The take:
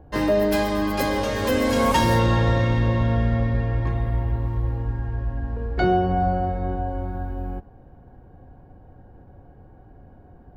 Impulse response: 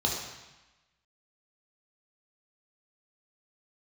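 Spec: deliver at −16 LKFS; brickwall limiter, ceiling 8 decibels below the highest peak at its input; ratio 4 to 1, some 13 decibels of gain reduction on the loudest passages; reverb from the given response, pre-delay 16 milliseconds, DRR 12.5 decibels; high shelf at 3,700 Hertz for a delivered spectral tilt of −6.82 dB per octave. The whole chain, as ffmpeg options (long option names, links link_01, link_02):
-filter_complex "[0:a]highshelf=frequency=3700:gain=-8.5,acompressor=threshold=-32dB:ratio=4,alimiter=level_in=4.5dB:limit=-24dB:level=0:latency=1,volume=-4.5dB,asplit=2[link_01][link_02];[1:a]atrim=start_sample=2205,adelay=16[link_03];[link_02][link_03]afir=irnorm=-1:irlink=0,volume=-21.5dB[link_04];[link_01][link_04]amix=inputs=2:normalize=0,volume=20.5dB"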